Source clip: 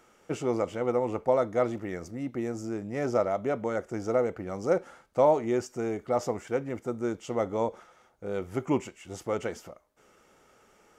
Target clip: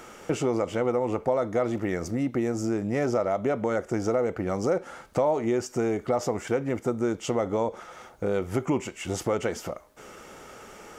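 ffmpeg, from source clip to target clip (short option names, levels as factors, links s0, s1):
-filter_complex "[0:a]asplit=2[s0][s1];[s1]alimiter=limit=0.0841:level=0:latency=1,volume=1.26[s2];[s0][s2]amix=inputs=2:normalize=0,acompressor=threshold=0.0158:ratio=2.5,volume=2.51"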